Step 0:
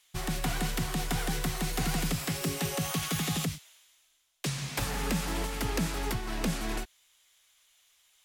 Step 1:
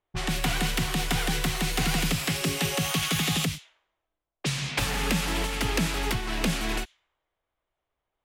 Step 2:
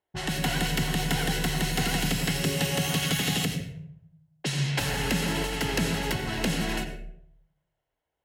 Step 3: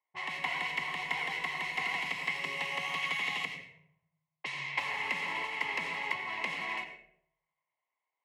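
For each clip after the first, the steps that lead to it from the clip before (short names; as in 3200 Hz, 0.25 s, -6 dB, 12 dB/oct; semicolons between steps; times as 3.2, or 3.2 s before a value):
low-pass opened by the level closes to 550 Hz, open at -29.5 dBFS; dynamic EQ 2800 Hz, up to +6 dB, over -51 dBFS, Q 1.1; gain +3.5 dB
notch comb 1200 Hz; on a send at -8 dB: reverb RT60 0.70 s, pre-delay 76 ms
double band-pass 1500 Hz, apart 0.98 oct; gain +5.5 dB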